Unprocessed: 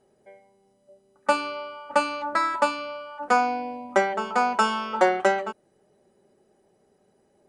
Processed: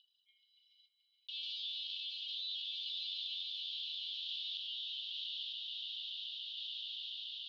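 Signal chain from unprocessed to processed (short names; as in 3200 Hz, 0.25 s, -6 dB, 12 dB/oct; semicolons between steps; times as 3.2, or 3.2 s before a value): formant sharpening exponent 2; in parallel at -5 dB: companded quantiser 2-bit; on the sum: overloaded stage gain 10.5 dB; limiter -19.5 dBFS, peak gain reduction 9 dB; steep high-pass 3000 Hz 96 dB/oct; swelling echo 0.143 s, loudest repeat 5, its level -10 dB; random-step tremolo; steep low-pass 3900 Hz 48 dB/oct; fast leveller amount 70%; gain +5 dB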